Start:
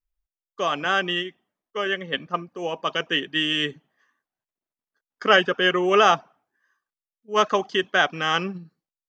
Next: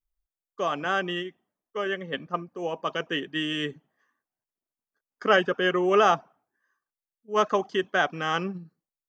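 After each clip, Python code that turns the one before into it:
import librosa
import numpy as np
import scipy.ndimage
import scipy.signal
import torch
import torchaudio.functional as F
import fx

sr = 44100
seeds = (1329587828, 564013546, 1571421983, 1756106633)

y = fx.peak_eq(x, sr, hz=3500.0, db=-7.0, octaves=2.2)
y = y * librosa.db_to_amplitude(-1.5)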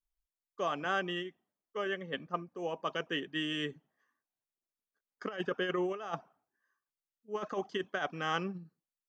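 y = fx.over_compress(x, sr, threshold_db=-24.0, ratio=-0.5)
y = y * librosa.db_to_amplitude(-8.0)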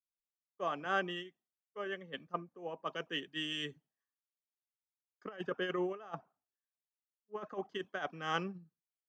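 y = fx.band_widen(x, sr, depth_pct=100)
y = y * librosa.db_to_amplitude(-4.5)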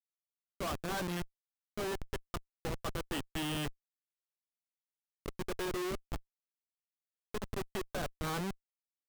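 y = fx.schmitt(x, sr, flips_db=-39.0)
y = y * librosa.db_to_amplitude(6.5)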